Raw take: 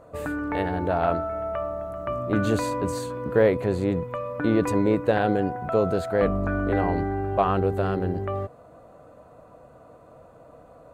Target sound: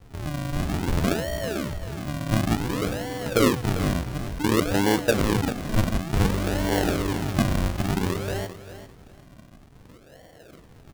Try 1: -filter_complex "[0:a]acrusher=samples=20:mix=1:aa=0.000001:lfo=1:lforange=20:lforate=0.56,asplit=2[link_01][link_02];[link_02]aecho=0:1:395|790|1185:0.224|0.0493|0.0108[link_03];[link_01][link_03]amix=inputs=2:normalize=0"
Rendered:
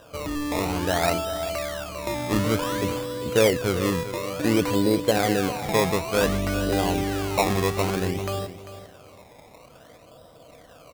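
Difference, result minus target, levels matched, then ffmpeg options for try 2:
sample-and-hold swept by an LFO: distortion −16 dB
-filter_complex "[0:a]acrusher=samples=69:mix=1:aa=0.000001:lfo=1:lforange=69:lforate=0.56,asplit=2[link_01][link_02];[link_02]aecho=0:1:395|790|1185:0.224|0.0493|0.0108[link_03];[link_01][link_03]amix=inputs=2:normalize=0"

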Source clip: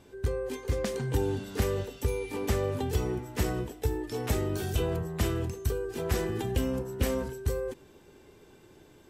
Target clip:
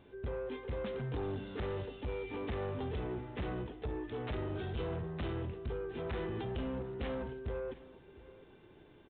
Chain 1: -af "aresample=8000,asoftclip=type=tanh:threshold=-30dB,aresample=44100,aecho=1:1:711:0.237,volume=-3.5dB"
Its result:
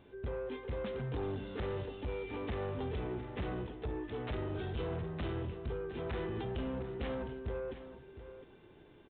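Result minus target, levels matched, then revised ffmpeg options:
echo-to-direct +7 dB
-af "aresample=8000,asoftclip=type=tanh:threshold=-30dB,aresample=44100,aecho=1:1:711:0.106,volume=-3.5dB"

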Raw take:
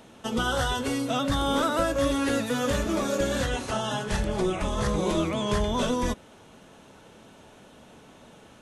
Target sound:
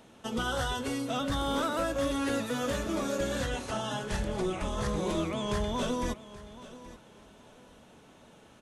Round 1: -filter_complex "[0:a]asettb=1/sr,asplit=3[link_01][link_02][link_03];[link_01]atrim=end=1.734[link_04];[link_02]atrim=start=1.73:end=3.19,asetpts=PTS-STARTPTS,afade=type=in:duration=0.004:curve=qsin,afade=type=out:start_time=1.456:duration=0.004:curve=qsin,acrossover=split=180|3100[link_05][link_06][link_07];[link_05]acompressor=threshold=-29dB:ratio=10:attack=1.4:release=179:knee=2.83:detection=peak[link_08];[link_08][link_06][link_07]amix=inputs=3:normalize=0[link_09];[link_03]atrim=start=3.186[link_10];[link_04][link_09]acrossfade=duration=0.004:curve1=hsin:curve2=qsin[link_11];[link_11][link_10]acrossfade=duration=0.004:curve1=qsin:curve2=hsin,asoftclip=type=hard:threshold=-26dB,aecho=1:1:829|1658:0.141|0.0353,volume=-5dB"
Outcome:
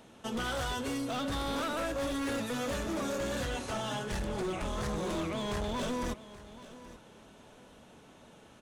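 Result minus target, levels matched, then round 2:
hard clipping: distortion +15 dB
-filter_complex "[0:a]asettb=1/sr,asplit=3[link_01][link_02][link_03];[link_01]atrim=end=1.734[link_04];[link_02]atrim=start=1.73:end=3.19,asetpts=PTS-STARTPTS,afade=type=in:duration=0.004:curve=qsin,afade=type=out:start_time=1.456:duration=0.004:curve=qsin,acrossover=split=180|3100[link_05][link_06][link_07];[link_05]acompressor=threshold=-29dB:ratio=10:attack=1.4:release=179:knee=2.83:detection=peak[link_08];[link_08][link_06][link_07]amix=inputs=3:normalize=0[link_09];[link_03]atrim=start=3.186[link_10];[link_04][link_09]acrossfade=duration=0.004:curve1=hsin:curve2=qsin[link_11];[link_11][link_10]acrossfade=duration=0.004:curve1=qsin:curve2=hsin,asoftclip=type=hard:threshold=-18dB,aecho=1:1:829|1658:0.141|0.0353,volume=-5dB"

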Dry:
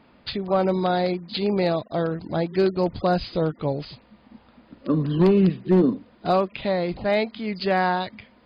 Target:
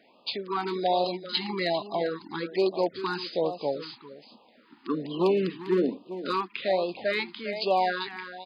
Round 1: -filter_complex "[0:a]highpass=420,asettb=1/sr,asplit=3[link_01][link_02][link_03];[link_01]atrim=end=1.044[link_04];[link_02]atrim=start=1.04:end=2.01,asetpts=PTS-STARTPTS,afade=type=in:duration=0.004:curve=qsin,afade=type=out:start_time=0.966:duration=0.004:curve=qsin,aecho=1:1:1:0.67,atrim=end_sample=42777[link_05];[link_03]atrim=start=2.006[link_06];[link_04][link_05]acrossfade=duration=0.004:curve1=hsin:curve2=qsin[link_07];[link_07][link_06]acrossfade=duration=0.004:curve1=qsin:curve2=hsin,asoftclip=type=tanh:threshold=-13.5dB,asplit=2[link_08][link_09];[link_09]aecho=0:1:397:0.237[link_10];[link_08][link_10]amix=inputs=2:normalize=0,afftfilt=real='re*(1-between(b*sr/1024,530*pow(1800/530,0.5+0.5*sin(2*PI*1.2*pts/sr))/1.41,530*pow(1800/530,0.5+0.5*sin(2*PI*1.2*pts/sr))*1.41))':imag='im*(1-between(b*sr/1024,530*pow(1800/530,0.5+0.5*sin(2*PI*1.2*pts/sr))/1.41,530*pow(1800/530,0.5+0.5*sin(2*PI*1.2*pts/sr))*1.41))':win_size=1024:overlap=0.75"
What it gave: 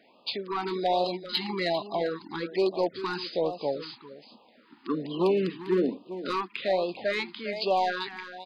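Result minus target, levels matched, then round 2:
soft clipping: distortion +16 dB
-filter_complex "[0:a]highpass=420,asettb=1/sr,asplit=3[link_01][link_02][link_03];[link_01]atrim=end=1.044[link_04];[link_02]atrim=start=1.04:end=2.01,asetpts=PTS-STARTPTS,afade=type=in:duration=0.004:curve=qsin,afade=type=out:start_time=0.966:duration=0.004:curve=qsin,aecho=1:1:1:0.67,atrim=end_sample=42777[link_05];[link_03]atrim=start=2.006[link_06];[link_04][link_05]acrossfade=duration=0.004:curve1=hsin:curve2=qsin[link_07];[link_07][link_06]acrossfade=duration=0.004:curve1=qsin:curve2=hsin,asoftclip=type=tanh:threshold=-4.5dB,asplit=2[link_08][link_09];[link_09]aecho=0:1:397:0.237[link_10];[link_08][link_10]amix=inputs=2:normalize=0,afftfilt=real='re*(1-between(b*sr/1024,530*pow(1800/530,0.5+0.5*sin(2*PI*1.2*pts/sr))/1.41,530*pow(1800/530,0.5+0.5*sin(2*PI*1.2*pts/sr))*1.41))':imag='im*(1-between(b*sr/1024,530*pow(1800/530,0.5+0.5*sin(2*PI*1.2*pts/sr))/1.41,530*pow(1800/530,0.5+0.5*sin(2*PI*1.2*pts/sr))*1.41))':win_size=1024:overlap=0.75"

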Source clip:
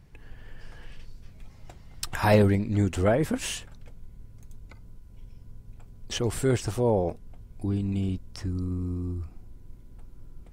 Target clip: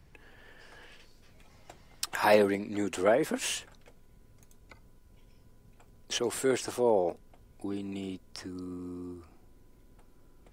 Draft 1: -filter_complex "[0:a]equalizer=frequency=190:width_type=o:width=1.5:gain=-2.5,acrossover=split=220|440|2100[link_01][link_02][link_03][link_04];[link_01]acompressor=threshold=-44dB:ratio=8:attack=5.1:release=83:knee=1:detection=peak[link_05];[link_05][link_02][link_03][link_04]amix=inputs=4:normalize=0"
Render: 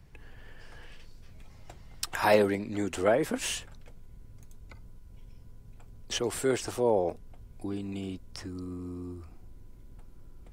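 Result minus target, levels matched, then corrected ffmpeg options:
downward compressor: peak gain reduction −10 dB
-filter_complex "[0:a]equalizer=frequency=190:width_type=o:width=1.5:gain=-2.5,acrossover=split=220|440|2100[link_01][link_02][link_03][link_04];[link_01]acompressor=threshold=-55.5dB:ratio=8:attack=5.1:release=83:knee=1:detection=peak[link_05];[link_05][link_02][link_03][link_04]amix=inputs=4:normalize=0"

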